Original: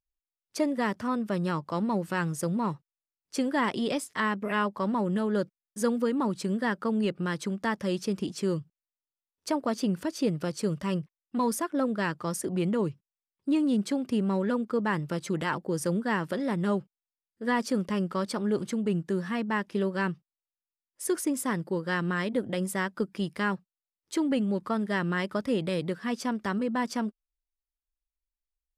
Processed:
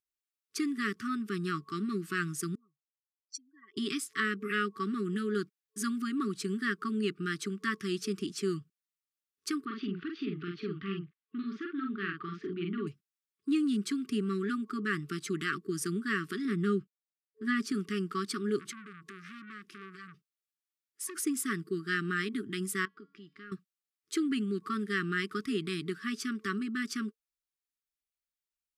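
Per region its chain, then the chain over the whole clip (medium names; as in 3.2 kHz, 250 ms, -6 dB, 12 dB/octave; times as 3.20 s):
2.55–3.77 s: spectral contrast enhancement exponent 2.6 + band-pass filter 6.3 kHz, Q 1.7 + comb 2.6 ms, depth 36%
9.65–12.87 s: steep low-pass 3.6 kHz + compression 1.5:1, threshold -35 dBFS + doubling 46 ms -3.5 dB
16.45–17.72 s: gate -46 dBFS, range -6 dB + tilt EQ -1.5 dB/octave
18.59–21.16 s: compression 16:1, threshold -32 dBFS + transformer saturation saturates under 1.8 kHz
22.85–23.52 s: compression 2:1, threshold -41 dBFS + distance through air 160 m + feedback comb 280 Hz, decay 0.59 s
whole clip: high-pass 310 Hz 6 dB/octave; FFT band-reject 440–1100 Hz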